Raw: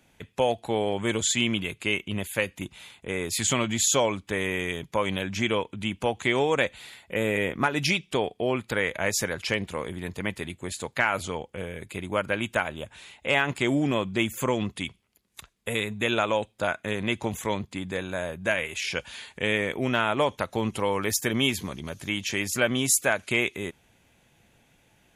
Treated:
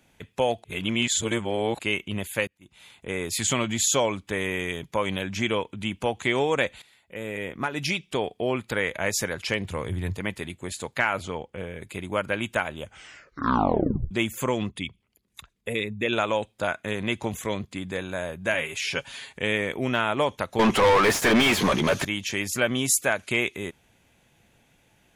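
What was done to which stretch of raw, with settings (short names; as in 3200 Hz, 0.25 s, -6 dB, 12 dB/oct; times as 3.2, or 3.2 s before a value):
0.64–1.79 reverse
2.47–2.98 auto swell 0.439 s
6.82–8.39 fade in, from -15 dB
9.64–10.17 bell 100 Hz +14.5 dB
11.13–11.82 high shelf 5500 Hz -9.5 dB
12.8 tape stop 1.31 s
14.69–16.13 formant sharpening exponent 1.5
17.32–17.88 notch 890 Hz, Q 6.2
18.53–19.33 comb 7.3 ms
20.59–22.05 overdrive pedal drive 34 dB, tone 1800 Hz, clips at -10 dBFS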